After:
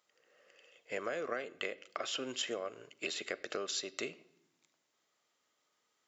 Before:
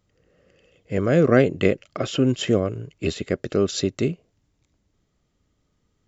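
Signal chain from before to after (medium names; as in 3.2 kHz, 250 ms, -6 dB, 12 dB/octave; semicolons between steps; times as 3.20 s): high-pass 760 Hz 12 dB/octave; compression 16:1, threshold -34 dBFS, peak gain reduction 17.5 dB; reverberation RT60 0.85 s, pre-delay 9 ms, DRR 15 dB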